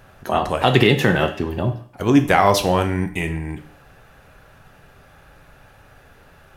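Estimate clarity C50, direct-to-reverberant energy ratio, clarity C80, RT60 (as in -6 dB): 11.5 dB, 6.0 dB, 15.5 dB, 0.50 s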